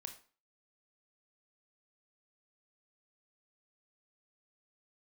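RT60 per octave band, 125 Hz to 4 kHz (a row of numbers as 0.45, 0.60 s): 0.35, 0.40, 0.40, 0.40, 0.35, 0.35 s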